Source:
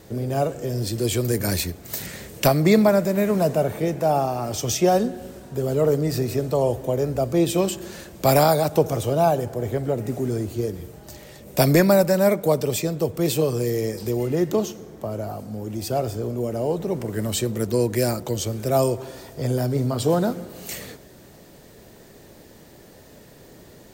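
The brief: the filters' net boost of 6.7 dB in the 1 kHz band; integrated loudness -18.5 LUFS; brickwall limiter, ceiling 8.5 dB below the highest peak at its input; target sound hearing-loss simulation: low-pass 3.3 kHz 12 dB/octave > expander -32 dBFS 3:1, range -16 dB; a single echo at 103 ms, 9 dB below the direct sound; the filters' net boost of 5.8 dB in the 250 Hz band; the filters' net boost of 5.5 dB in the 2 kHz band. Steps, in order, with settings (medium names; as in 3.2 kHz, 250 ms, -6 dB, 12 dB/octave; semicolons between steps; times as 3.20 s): peaking EQ 250 Hz +7.5 dB; peaking EQ 1 kHz +8.5 dB; peaking EQ 2 kHz +4.5 dB; peak limiter -8.5 dBFS; low-pass 3.3 kHz 12 dB/octave; delay 103 ms -9 dB; expander -32 dBFS 3:1, range -16 dB; trim +1.5 dB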